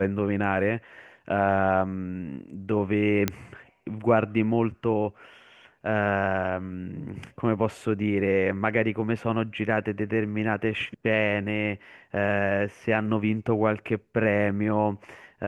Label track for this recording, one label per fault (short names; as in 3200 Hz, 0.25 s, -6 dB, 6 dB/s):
3.280000	3.280000	pop -8 dBFS